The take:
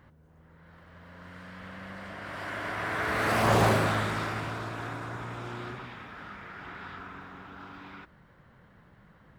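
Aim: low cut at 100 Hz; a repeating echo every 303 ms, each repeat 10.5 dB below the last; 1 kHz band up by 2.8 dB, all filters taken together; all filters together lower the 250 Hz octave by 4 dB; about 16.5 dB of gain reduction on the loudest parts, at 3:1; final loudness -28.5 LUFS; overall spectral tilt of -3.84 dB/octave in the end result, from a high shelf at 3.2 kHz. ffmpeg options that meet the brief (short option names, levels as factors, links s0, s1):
-af "highpass=100,equalizer=f=250:t=o:g=-5.5,equalizer=f=1000:t=o:g=5,highshelf=f=3200:g=-9,acompressor=threshold=0.00794:ratio=3,aecho=1:1:303|606|909:0.299|0.0896|0.0269,volume=5.01"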